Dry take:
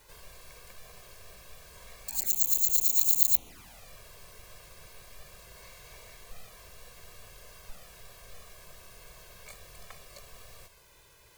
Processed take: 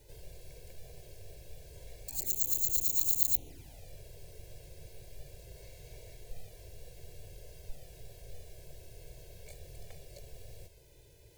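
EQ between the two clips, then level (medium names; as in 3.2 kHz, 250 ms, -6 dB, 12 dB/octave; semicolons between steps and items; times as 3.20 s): peaking EQ 180 Hz +12.5 dB 2.1 oct; bass shelf 380 Hz +8 dB; static phaser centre 490 Hz, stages 4; -5.0 dB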